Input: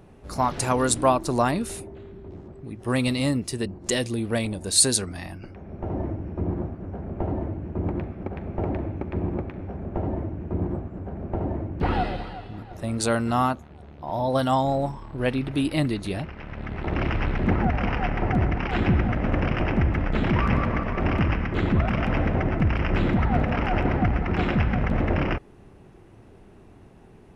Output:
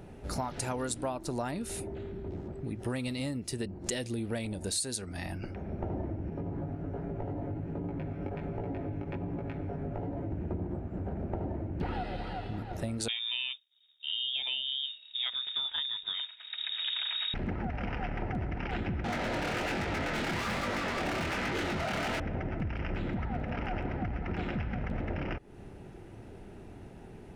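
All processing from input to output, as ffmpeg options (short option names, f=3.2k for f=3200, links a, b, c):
-filter_complex "[0:a]asettb=1/sr,asplit=3[a][b][c];[a]atrim=end=6.304[d];[b]atrim=start=6.3:end=10.32,asetpts=PTS-STARTPTS,afade=t=in:d=0.004:c=qsin,afade=t=out:st=4.016:d=0.004:c=qsin,aecho=1:1:7.1:0.56,atrim=end_sample=177282,acompressor=threshold=-28dB:ratio=6:attack=3.2:release=140:knee=1:detection=peak,flanger=delay=17.5:depth=2.6:speed=1.3[e];[c]atrim=start=10.316[f];[d][e]acrossfade=d=0.004:c1=hsin:c2=qsin[g];[g][f]acrossfade=d=0.004:c1=qsin:c2=hsin,asettb=1/sr,asplit=3[h][i][j];[h]atrim=end=13.084[k];[i]atrim=start=13.08:end=17.34,asetpts=PTS-STARTPTS,afade=t=in:d=0.004:c=qsin,afade=t=out:st=4.256:d=0.004:c=qsin,lowpass=f=3.2k:t=q:w=0.5098,lowpass=f=3.2k:t=q:w=0.6013,lowpass=f=3.2k:t=q:w=0.9,lowpass=f=3.2k:t=q:w=2.563,afreqshift=-3800,agate=range=-33dB:threshold=-30dB:ratio=3:release=100:detection=peak[l];[j]atrim=start=17.336[m];[k][l]acrossfade=d=0.004:c1=hsin:c2=qsin[n];[n][m]acrossfade=d=0.004:c1=qsin:c2=hsin,asettb=1/sr,asplit=3[o][p][q];[o]atrim=end=19.044[r];[p]atrim=start=19.04:end=22.2,asetpts=PTS-STARTPTS,afade=t=in:d=0.004:c=qsin,afade=t=out:st=3.156:d=0.004:c=qsin,asplit=2[s][t];[t]highpass=f=720:p=1,volume=34dB,asoftclip=type=tanh:threshold=-10dB[u];[s][u]amix=inputs=2:normalize=0,lowpass=f=5.4k:p=1,volume=-6dB,flanger=delay=20:depth=7.2:speed=1.2[v];[q]atrim=start=22.196[w];[r][v]acrossfade=d=0.004:c1=hsin:c2=qsin[x];[x][w]acrossfade=d=0.004:c1=qsin:c2=hsin,bandreject=f=1.1k:w=6.9,acompressor=threshold=-34dB:ratio=6,volume=2dB"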